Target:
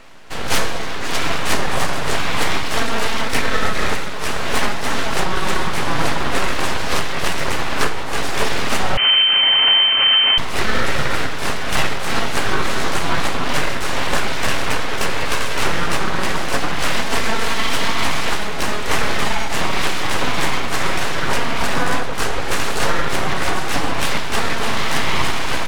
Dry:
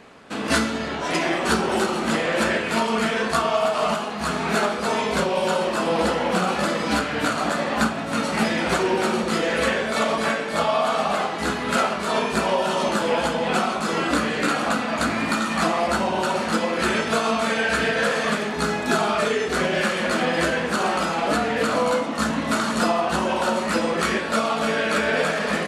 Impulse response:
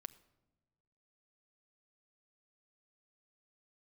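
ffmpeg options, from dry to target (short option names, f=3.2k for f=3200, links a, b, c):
-filter_complex "[0:a]aeval=exprs='abs(val(0))':c=same,asplit=2[a][b];[1:a]atrim=start_sample=2205,asetrate=35721,aresample=44100[c];[b][c]afir=irnorm=-1:irlink=0,volume=10.5dB[d];[a][d]amix=inputs=2:normalize=0,asettb=1/sr,asplit=3[e][f][g];[e]atrim=end=8.974[h];[f]atrim=start=8.97:end=10.38,asetpts=PTS-STARTPTS,afade=t=in:d=0.004:c=qsin,afade=t=out:st=1.406:d=0.004:c=qsin,lowpass=f=2.6k:t=q:w=0.5098,lowpass=f=2.6k:t=q:w=0.6013,lowpass=f=2.6k:t=q:w=0.9,lowpass=f=2.6k:t=q:w=2.563,afreqshift=-3100[i];[g]atrim=start=10.376[j];[h][i]acrossfade=d=0.004:c1=hsin:c2=qsin[k];[k][j]acrossfade=d=0.004:c1=qsin:c2=hsin,volume=-4.5dB"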